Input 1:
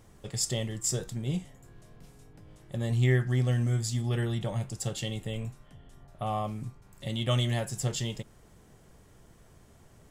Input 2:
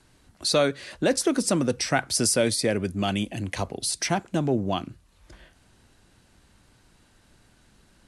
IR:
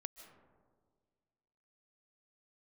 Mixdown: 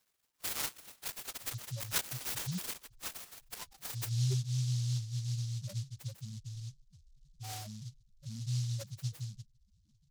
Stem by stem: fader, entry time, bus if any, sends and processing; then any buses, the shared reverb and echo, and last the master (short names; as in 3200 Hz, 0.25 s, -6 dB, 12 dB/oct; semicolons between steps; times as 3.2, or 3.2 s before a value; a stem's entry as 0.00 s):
-5.5 dB, 1.20 s, send -23 dB, band shelf 1700 Hz -9.5 dB; bit-crush 10-bit
-1.5 dB, 0.00 s, send -6 dB, inverse Chebyshev high-pass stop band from 480 Hz, stop band 40 dB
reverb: on, RT60 1.8 s, pre-delay 0.11 s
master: loudest bins only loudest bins 2; noise-modulated delay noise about 5000 Hz, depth 0.24 ms